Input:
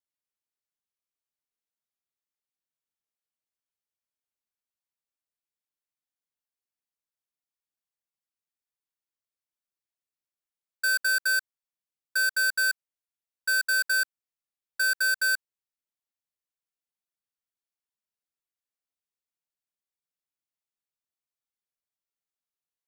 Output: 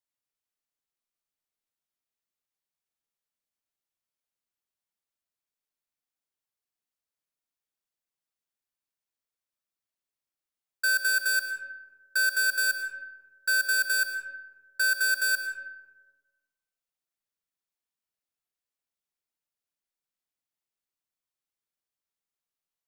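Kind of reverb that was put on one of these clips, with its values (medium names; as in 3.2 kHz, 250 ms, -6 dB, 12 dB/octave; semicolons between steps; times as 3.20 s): algorithmic reverb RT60 1.3 s, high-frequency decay 0.45×, pre-delay 80 ms, DRR 6.5 dB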